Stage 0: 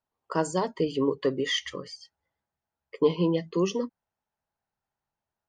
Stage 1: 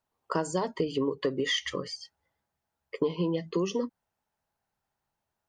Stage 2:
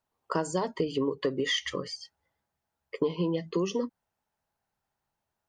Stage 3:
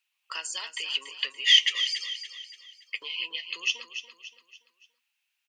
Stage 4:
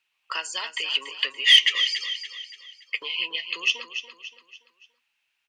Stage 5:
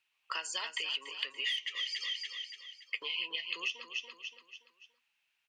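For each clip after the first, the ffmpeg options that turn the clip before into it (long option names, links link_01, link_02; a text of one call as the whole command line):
ffmpeg -i in.wav -af "acompressor=threshold=-29dB:ratio=6,volume=4dB" out.wav
ffmpeg -i in.wav -af anull out.wav
ffmpeg -i in.wav -af "highpass=frequency=2600:width_type=q:width=5.3,aecho=1:1:286|572|858|1144:0.316|0.133|0.0558|0.0234,volume=4.5dB" out.wav
ffmpeg -i in.wav -af "lowpass=frequency=2600:poles=1,aeval=exprs='0.316*(cos(1*acos(clip(val(0)/0.316,-1,1)))-cos(1*PI/2))+0.01*(cos(5*acos(clip(val(0)/0.316,-1,1)))-cos(5*PI/2))':channel_layout=same,volume=7dB" out.wav
ffmpeg -i in.wav -af "acompressor=threshold=-28dB:ratio=16,volume=-4dB" out.wav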